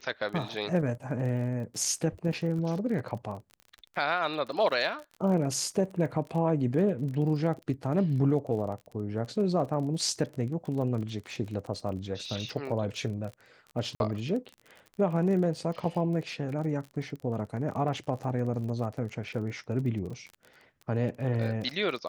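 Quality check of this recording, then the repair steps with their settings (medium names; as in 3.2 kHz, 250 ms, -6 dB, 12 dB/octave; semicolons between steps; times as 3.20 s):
crackle 32 per s -37 dBFS
13.95–14.00 s: dropout 51 ms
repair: de-click; interpolate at 13.95 s, 51 ms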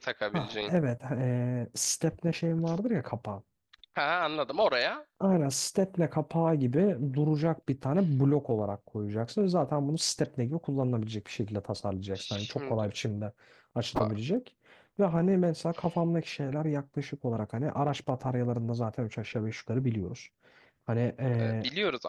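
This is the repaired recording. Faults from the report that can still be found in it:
nothing left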